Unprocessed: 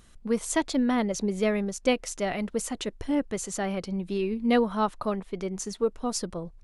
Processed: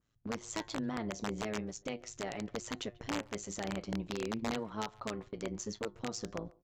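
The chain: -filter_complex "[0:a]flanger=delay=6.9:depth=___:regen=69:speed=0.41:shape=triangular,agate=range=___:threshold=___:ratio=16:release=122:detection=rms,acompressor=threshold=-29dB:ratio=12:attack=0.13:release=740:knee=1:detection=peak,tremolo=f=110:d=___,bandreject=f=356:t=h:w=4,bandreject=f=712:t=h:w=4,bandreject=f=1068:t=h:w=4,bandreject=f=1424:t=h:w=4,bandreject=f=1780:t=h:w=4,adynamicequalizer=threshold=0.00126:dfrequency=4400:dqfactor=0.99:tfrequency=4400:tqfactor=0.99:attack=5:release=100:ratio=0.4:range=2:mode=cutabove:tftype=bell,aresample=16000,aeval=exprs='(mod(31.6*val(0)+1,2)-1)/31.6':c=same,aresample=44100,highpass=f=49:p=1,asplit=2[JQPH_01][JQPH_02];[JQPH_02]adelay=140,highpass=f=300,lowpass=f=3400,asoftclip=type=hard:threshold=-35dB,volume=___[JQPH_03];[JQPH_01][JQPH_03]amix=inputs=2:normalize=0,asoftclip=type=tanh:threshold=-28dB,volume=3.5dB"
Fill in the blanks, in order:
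3.7, -17dB, -44dB, 0.824, -24dB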